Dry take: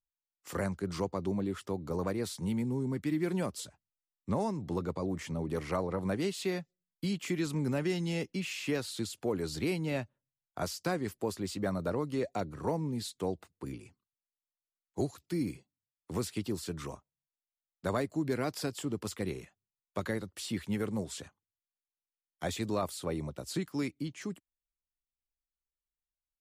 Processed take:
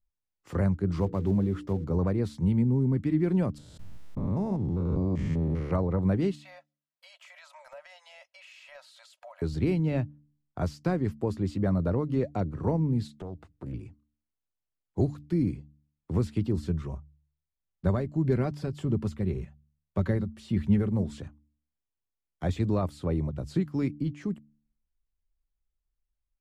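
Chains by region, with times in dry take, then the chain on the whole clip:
0:00.96–0:01.85: one scale factor per block 5 bits + mains-hum notches 60/120/180/240/300/360/420/480 Hz
0:03.58–0:05.71: spectrum averaged block by block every 200 ms + background raised ahead of every attack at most 22 dB per second
0:06.35–0:09.42: linear-phase brick-wall high-pass 530 Hz + comb filter 3.1 ms, depth 42% + downward compressor 4 to 1, threshold −45 dBFS
0:13.07–0:13.74: downward compressor 4 to 1, threshold −41 dBFS + highs frequency-modulated by the lows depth 0.34 ms
0:16.57–0:20.92: parametric band 81 Hz +8.5 dB 1 octave + comb filter 5.2 ms, depth 39% + amplitude tremolo 1.7 Hz, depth 39%
whole clip: RIAA equalisation playback; hum removal 73.42 Hz, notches 4

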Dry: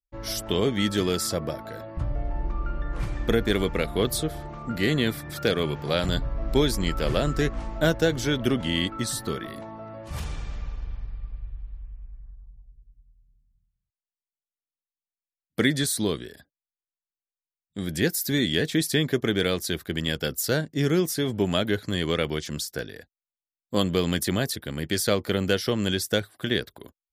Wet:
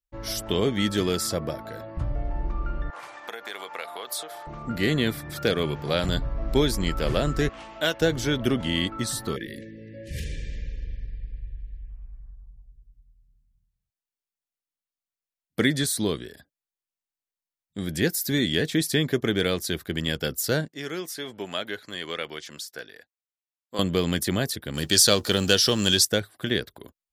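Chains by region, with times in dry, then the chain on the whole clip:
0:02.90–0:04.47: downward compressor 10 to 1, threshold −25 dBFS + high-pass with resonance 830 Hz, resonance Q 1.6
0:07.49–0:08.01: high-pass filter 700 Hz 6 dB per octave + parametric band 2,900 Hz +8.5 dB 0.67 octaves
0:09.36–0:11.90: linear-phase brick-wall band-stop 580–1,600 Hz + parametric band 990 Hz +7 dB 1.5 octaves
0:20.68–0:23.79: high-pass filter 1,100 Hz 6 dB per octave + high-shelf EQ 4,000 Hz −7 dB
0:24.74–0:26.05: mu-law and A-law mismatch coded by mu + parametric band 5,800 Hz +12.5 dB 2.3 octaves + notch filter 2,100 Hz, Q 5.2
whole clip: no processing

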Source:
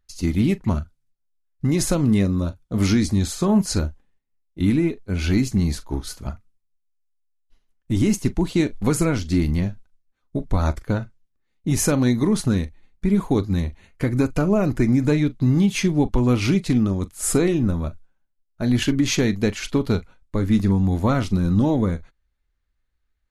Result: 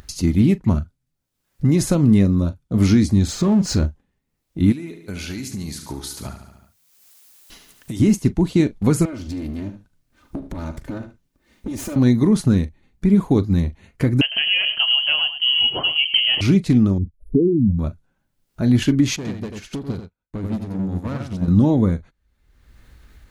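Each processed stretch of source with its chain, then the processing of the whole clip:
0:03.28–0:03.86: low-pass filter 7,300 Hz 24 dB per octave + downward compressor 4 to 1, threshold −18 dBFS + power curve on the samples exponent 0.7
0:04.72–0:08.00: spectral tilt +3 dB per octave + downward compressor, threshold −32 dBFS + repeating echo 72 ms, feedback 48%, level −11 dB
0:09.05–0:11.96: lower of the sound and its delayed copy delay 3.3 ms + downward compressor, threshold −30 dBFS + single-tap delay 74 ms −12.5 dB
0:14.21–0:16.41: single-tap delay 104 ms −11.5 dB + voice inversion scrambler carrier 3,100 Hz
0:16.98–0:17.79: expanding power law on the bin magnitudes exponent 2.5 + inverse Chebyshev band-stop filter 2,000–9,000 Hz, stop band 70 dB
0:19.16–0:21.48: tube saturation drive 23 dB, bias 0.35 + single-tap delay 89 ms −3.5 dB + expander for the loud parts 2.5 to 1, over −45 dBFS
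whole clip: high-pass filter 120 Hz 6 dB per octave; low-shelf EQ 310 Hz +10.5 dB; upward compression, threshold −22 dBFS; level −1.5 dB

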